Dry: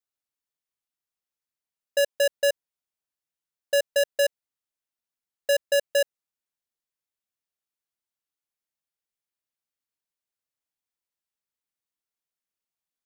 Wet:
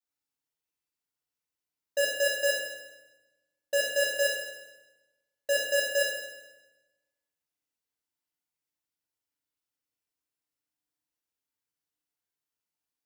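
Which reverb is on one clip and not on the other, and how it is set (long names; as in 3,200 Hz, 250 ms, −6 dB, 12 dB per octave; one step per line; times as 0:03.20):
feedback delay network reverb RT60 1.1 s, low-frequency decay 1.3×, high-frequency decay 0.9×, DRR −7 dB
level −7.5 dB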